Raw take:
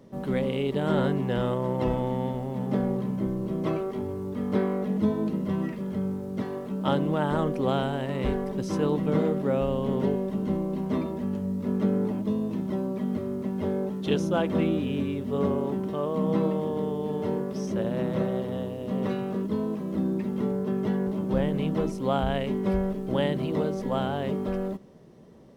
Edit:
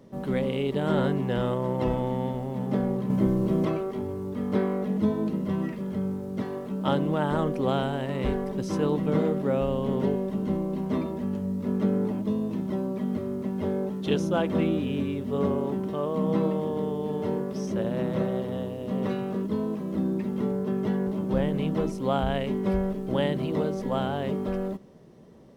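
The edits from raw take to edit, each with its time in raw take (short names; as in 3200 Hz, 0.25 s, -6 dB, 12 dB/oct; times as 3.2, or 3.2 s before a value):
3.1–3.65 gain +5.5 dB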